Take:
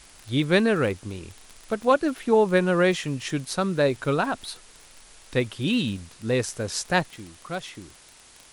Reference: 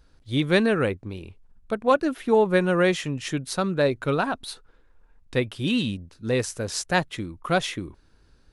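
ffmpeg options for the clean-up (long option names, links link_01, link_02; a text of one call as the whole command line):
ffmpeg -i in.wav -af "adeclick=threshold=4,afwtdn=0.0035,asetnsamples=nb_out_samples=441:pad=0,asendcmd='7.1 volume volume 9.5dB',volume=0dB" out.wav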